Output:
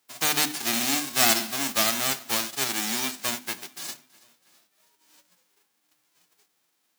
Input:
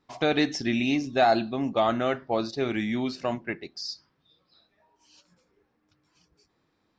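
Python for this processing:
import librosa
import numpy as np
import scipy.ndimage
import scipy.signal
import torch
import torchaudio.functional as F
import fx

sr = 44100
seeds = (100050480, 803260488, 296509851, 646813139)

p1 = fx.envelope_flatten(x, sr, power=0.1)
p2 = scipy.signal.sosfilt(scipy.signal.butter(2, 170.0, 'highpass', fs=sr, output='sos'), p1)
p3 = fx.hum_notches(p2, sr, base_hz=50, count=6)
y = p3 + fx.echo_feedback(p3, sr, ms=326, feedback_pct=52, wet_db=-23, dry=0)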